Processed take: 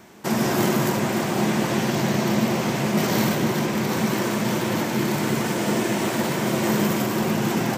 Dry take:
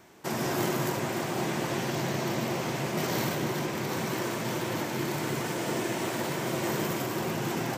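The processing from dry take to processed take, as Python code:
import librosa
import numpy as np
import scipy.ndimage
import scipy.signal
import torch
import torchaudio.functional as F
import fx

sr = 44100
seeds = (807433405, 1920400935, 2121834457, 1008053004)

y = fx.peak_eq(x, sr, hz=210.0, db=10.5, octaves=0.24)
y = F.gain(torch.from_numpy(y), 6.5).numpy()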